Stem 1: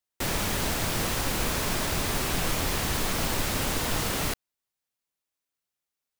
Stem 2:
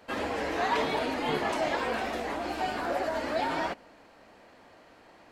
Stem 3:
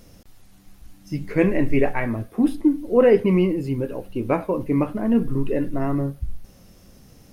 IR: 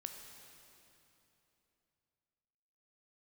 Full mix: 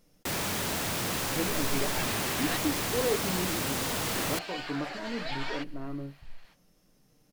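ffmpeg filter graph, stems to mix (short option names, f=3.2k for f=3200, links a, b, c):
-filter_complex "[0:a]highpass=99,asoftclip=type=tanh:threshold=-30.5dB,adelay=50,volume=2dB,asplit=2[a][b];[b]volume=-21dB[c];[1:a]bandpass=f=3.7k:t=q:w=0.9:csg=0,adelay=1900,volume=2.5dB,asplit=3[d][e][f];[d]atrim=end=2.57,asetpts=PTS-STARTPTS,afade=t=out:st=2.566:d=0.004:c=hsin[g];[e]atrim=start=2.57:end=4.06,asetpts=PTS-STARTPTS,volume=0[h];[f]atrim=start=4.06,asetpts=PTS-STARTPTS,afade=t=in:d=0.004:c=hsin[i];[g][h][i]concat=n=3:v=0:a=1[j];[2:a]equalizer=f=64:t=o:w=1.2:g=-14.5,aecho=1:1:6.6:0.34,volume=-14.5dB,asplit=2[k][l];[l]apad=whole_len=318395[m];[j][m]sidechaingate=range=-33dB:threshold=-54dB:ratio=16:detection=peak[n];[3:a]atrim=start_sample=2205[o];[c][o]afir=irnorm=-1:irlink=0[p];[a][n][k][p]amix=inputs=4:normalize=0"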